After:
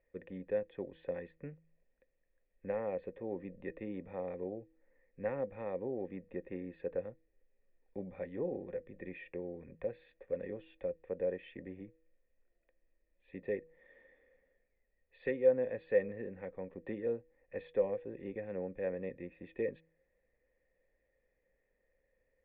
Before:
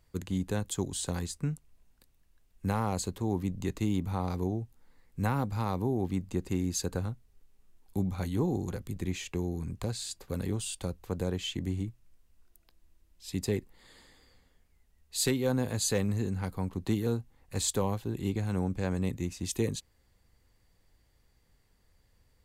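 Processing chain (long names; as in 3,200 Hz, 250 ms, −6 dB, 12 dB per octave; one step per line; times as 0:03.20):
formant resonators in series e
parametric band 93 Hz −12 dB 1 octave
hum removal 161.8 Hz, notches 3
level +7 dB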